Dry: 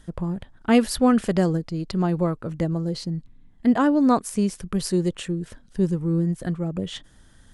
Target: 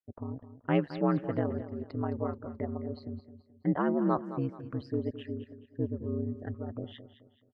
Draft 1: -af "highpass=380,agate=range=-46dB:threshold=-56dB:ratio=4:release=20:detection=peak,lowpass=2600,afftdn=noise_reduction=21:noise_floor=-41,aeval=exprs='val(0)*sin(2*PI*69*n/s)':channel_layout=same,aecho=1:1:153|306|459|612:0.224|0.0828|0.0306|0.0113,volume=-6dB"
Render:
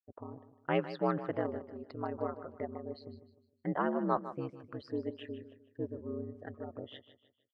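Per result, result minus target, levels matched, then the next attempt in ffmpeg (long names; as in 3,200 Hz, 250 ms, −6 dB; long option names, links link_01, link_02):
echo 62 ms early; 125 Hz band −4.5 dB
-af "highpass=380,agate=range=-46dB:threshold=-56dB:ratio=4:release=20:detection=peak,lowpass=2600,afftdn=noise_reduction=21:noise_floor=-41,aeval=exprs='val(0)*sin(2*PI*69*n/s)':channel_layout=same,aecho=1:1:215|430|645|860:0.224|0.0828|0.0306|0.0113,volume=-6dB"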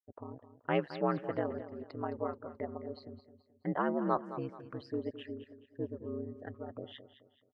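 125 Hz band −5.0 dB
-af "highpass=170,agate=range=-46dB:threshold=-56dB:ratio=4:release=20:detection=peak,lowpass=2600,afftdn=noise_reduction=21:noise_floor=-41,aeval=exprs='val(0)*sin(2*PI*69*n/s)':channel_layout=same,aecho=1:1:215|430|645|860:0.224|0.0828|0.0306|0.0113,volume=-6dB"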